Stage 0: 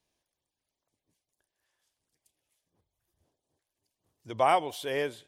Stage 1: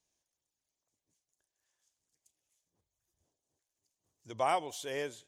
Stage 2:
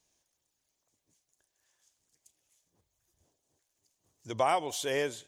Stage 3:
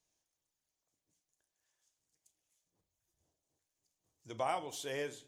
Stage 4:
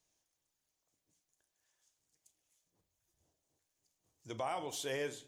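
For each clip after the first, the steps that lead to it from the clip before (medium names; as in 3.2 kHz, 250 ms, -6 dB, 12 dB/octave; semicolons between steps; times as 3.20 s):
peaking EQ 6.7 kHz +12.5 dB 0.6 oct; trim -6.5 dB
compression 2:1, threshold -34 dBFS, peak gain reduction 5.5 dB; trim +7.5 dB
reverberation RT60 0.45 s, pre-delay 6 ms, DRR 10 dB; trim -8.5 dB
peak limiter -30.5 dBFS, peak gain reduction 8 dB; trim +2.5 dB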